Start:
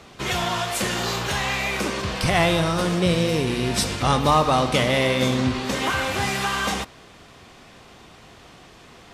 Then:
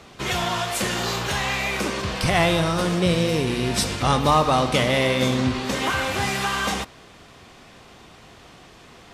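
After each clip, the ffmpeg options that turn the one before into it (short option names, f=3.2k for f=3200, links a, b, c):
-af anull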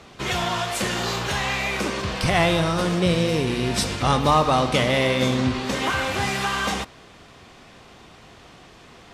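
-af "highshelf=f=11k:g=-6.5"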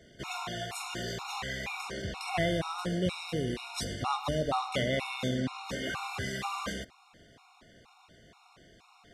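-af "afftfilt=real='re*gt(sin(2*PI*2.1*pts/sr)*(1-2*mod(floor(b*sr/1024/720),2)),0)':imag='im*gt(sin(2*PI*2.1*pts/sr)*(1-2*mod(floor(b*sr/1024/720),2)),0)':win_size=1024:overlap=0.75,volume=-8.5dB"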